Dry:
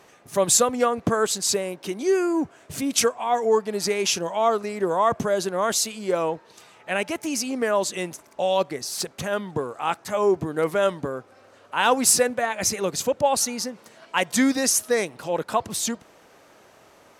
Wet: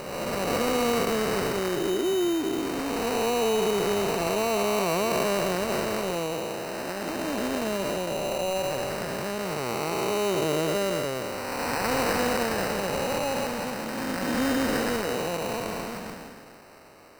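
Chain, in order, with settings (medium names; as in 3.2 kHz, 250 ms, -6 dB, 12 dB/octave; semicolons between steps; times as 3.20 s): spectral blur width 707 ms; sample-and-hold 13×; trim +4 dB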